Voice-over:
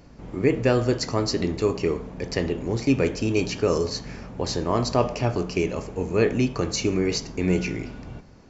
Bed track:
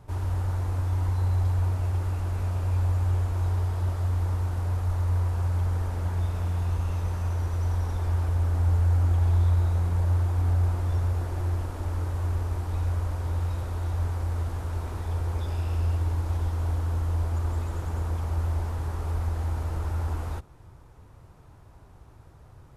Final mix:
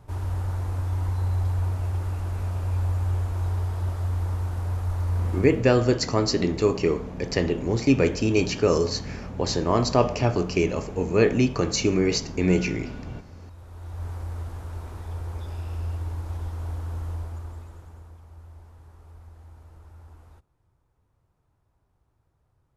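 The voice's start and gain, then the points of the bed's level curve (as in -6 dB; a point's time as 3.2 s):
5.00 s, +1.5 dB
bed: 5.37 s -0.5 dB
5.71 s -18.5 dB
13.38 s -18.5 dB
14.1 s -4.5 dB
17.09 s -4.5 dB
18.21 s -19 dB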